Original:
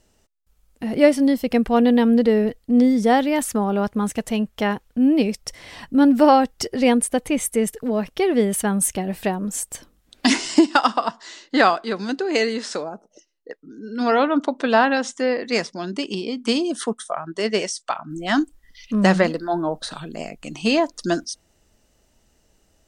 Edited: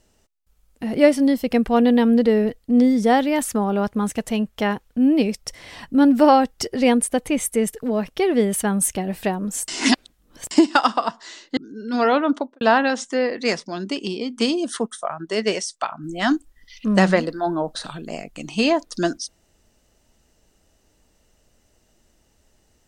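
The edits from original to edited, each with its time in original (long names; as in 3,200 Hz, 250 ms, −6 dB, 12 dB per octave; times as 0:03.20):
0:09.68–0:10.51: reverse
0:11.57–0:13.64: remove
0:14.38–0:14.68: fade out and dull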